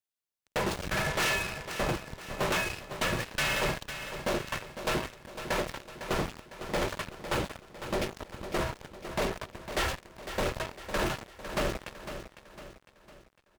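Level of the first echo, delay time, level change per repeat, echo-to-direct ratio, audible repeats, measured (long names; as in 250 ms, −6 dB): −10.5 dB, 504 ms, −7.0 dB, −9.5 dB, 4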